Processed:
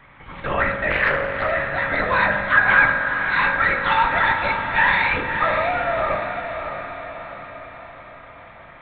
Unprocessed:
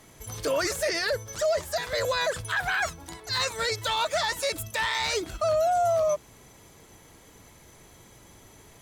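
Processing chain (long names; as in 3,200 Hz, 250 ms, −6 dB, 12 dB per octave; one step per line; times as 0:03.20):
flat-topped bell 1,500 Hz +12 dB
linear-prediction vocoder at 8 kHz whisper
feedback delay with all-pass diffusion 581 ms, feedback 54%, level −7 dB
convolution reverb RT60 1.2 s, pre-delay 3 ms, DRR 2.5 dB
0:00.90–0:01.51: highs frequency-modulated by the lows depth 0.35 ms
level −1.5 dB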